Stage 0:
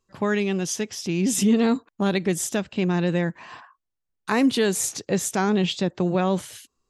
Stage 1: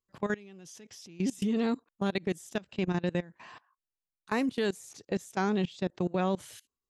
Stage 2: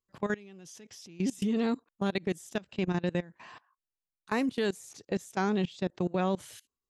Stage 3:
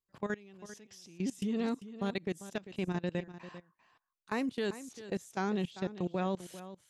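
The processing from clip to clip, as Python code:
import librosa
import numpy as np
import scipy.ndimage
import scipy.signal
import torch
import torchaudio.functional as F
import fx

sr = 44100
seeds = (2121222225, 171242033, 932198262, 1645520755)

y1 = fx.level_steps(x, sr, step_db=22)
y1 = y1 * librosa.db_to_amplitude(-5.5)
y2 = y1
y3 = y2 + 10.0 ** (-14.0 / 20.0) * np.pad(y2, (int(395 * sr / 1000.0), 0))[:len(y2)]
y3 = y3 * librosa.db_to_amplitude(-4.5)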